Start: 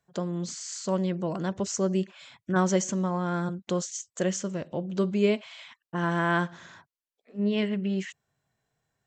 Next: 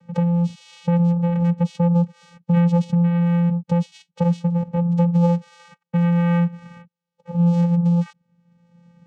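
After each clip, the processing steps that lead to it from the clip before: tilt shelf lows +3 dB; vocoder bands 4, square 172 Hz; three-band squash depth 70%; gain +8 dB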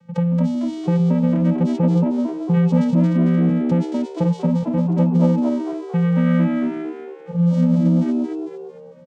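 de-hum 286.6 Hz, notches 10; on a send: frequency-shifting echo 0.225 s, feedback 45%, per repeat +72 Hz, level -4 dB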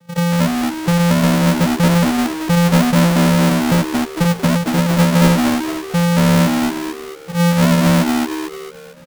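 half-waves squared off

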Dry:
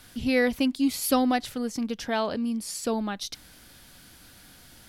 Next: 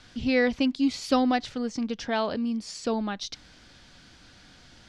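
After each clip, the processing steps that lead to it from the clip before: LPF 6400 Hz 24 dB/oct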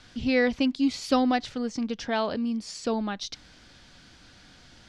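nothing audible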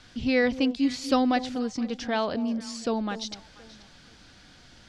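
echo with dull and thin repeats by turns 0.241 s, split 860 Hz, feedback 50%, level -13 dB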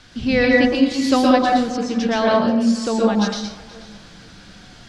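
plate-style reverb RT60 0.7 s, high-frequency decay 0.55×, pre-delay 0.105 s, DRR -2.5 dB; gain +5 dB

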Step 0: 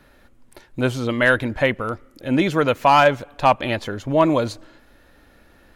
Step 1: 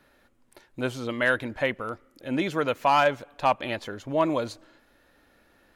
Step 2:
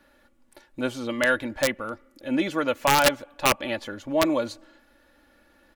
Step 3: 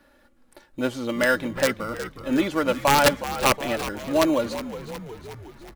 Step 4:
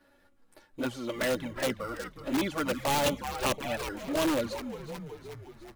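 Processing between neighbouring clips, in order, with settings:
low shelf 140 Hz -9 dB; gain -6.5 dB
comb 3.5 ms, depth 53%; wrapped overs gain 11.5 dB
frequency-shifting echo 0.365 s, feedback 62%, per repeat -69 Hz, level -12.5 dB; in parallel at -10 dB: sample-and-hold 13×
envelope flanger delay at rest 11.1 ms, full sweep at -16.5 dBFS; in parallel at -3 dB: wrapped overs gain 18 dB; on the sum: gain -7.5 dB

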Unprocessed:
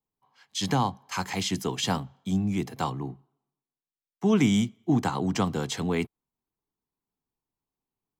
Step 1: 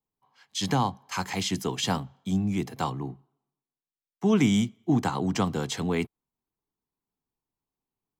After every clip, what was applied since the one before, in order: nothing audible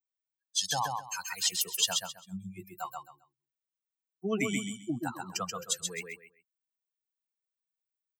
per-bin expansion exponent 3; RIAA curve recording; on a send: feedback echo 0.132 s, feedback 23%, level -4 dB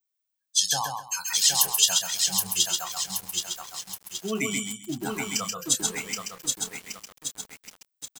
high shelf 3200 Hz +10.5 dB; doubler 28 ms -9.5 dB; lo-fi delay 0.774 s, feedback 55%, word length 7-bit, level -3 dB

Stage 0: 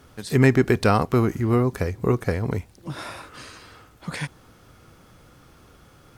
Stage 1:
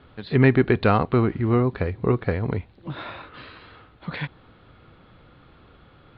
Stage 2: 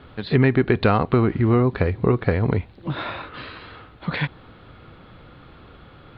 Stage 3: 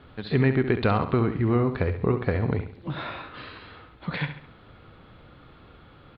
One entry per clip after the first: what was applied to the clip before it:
steep low-pass 4200 Hz 72 dB/oct
compressor 3:1, threshold -21 dBFS, peak gain reduction 8 dB; gain +6 dB
feedback echo 68 ms, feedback 41%, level -10 dB; gain -5 dB

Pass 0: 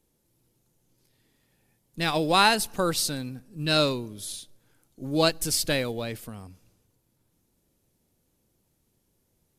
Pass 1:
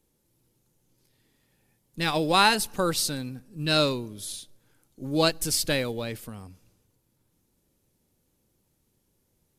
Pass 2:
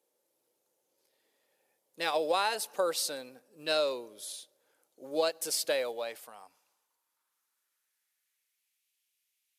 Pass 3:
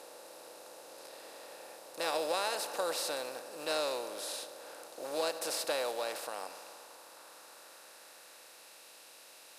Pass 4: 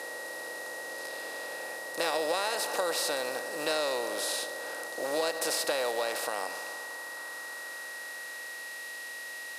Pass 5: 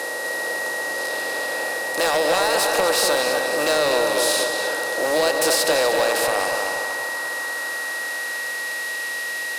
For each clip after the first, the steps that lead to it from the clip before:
notch 680 Hz, Q 17
high-pass sweep 540 Hz -> 2500 Hz, 5.66–8.87; compressor 6:1, threshold -19 dBFS, peak gain reduction 7.5 dB; gain -5.5 dB
per-bin compression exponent 0.4; gain -8.5 dB
compressor 2.5:1, threshold -37 dBFS, peak gain reduction 6 dB; whine 1900 Hz -48 dBFS; gain +8.5 dB
sine folder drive 8 dB, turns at -14.5 dBFS; darkening echo 0.242 s, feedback 51%, low-pass 4800 Hz, level -5 dB

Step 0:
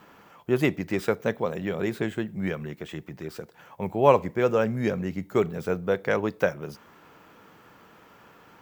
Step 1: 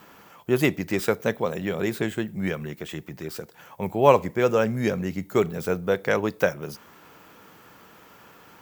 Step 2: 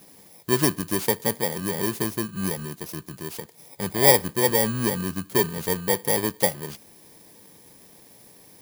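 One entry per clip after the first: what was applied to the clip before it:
high shelf 4700 Hz +9 dB; gain +1.5 dB
FFT order left unsorted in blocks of 32 samples

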